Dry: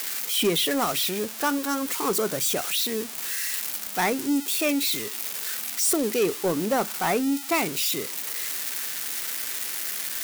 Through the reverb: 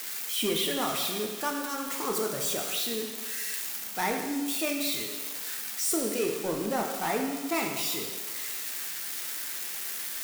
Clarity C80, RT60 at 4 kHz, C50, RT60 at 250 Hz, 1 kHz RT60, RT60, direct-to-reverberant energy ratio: 5.5 dB, 1.3 s, 4.0 dB, 1.2 s, 1.4 s, 1.4 s, 1.0 dB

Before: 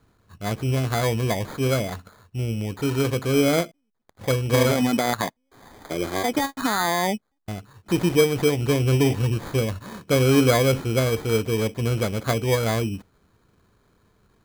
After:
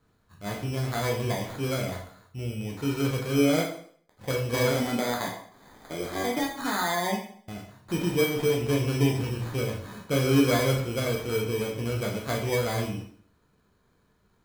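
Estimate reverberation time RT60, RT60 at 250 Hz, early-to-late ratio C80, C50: 0.55 s, 0.60 s, 9.0 dB, 6.0 dB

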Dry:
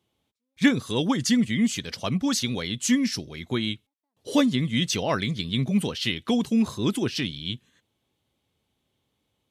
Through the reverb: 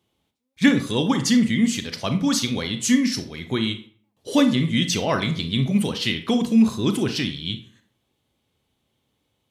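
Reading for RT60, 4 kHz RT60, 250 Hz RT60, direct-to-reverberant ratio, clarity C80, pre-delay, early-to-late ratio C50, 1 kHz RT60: 0.50 s, 0.35 s, 0.55 s, 8.0 dB, 15.0 dB, 30 ms, 11.0 dB, 0.50 s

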